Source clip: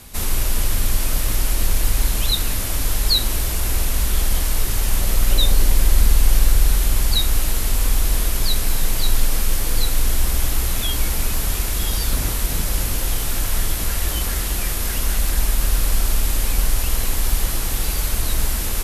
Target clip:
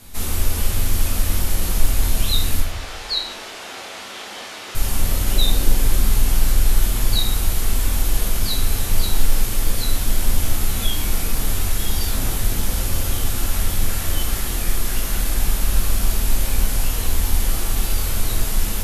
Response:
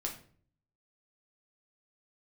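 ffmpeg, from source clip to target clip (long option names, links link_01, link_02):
-filter_complex "[0:a]asettb=1/sr,asplit=3[link_01][link_02][link_03];[link_01]atrim=end=2.604[link_04];[link_02]atrim=start=2.6:end=4.75,asetpts=PTS-STARTPTS,afade=type=in:duration=0.004:curve=qsin,afade=type=out:start_time=2.146:duration=0.004:curve=qsin,highpass=500,lowpass=4500[link_05];[link_03]atrim=start=4.746[link_06];[link_04][link_05]acrossfade=duration=0.004:curve1=hsin:curve2=qsin[link_07];[link_07][link_06]acrossfade=duration=0.004:curve1=qsin:curve2=hsin[link_08];[1:a]atrim=start_sample=2205,asetrate=28665,aresample=44100[link_09];[link_08][link_09]afir=irnorm=-1:irlink=0,volume=-4.5dB"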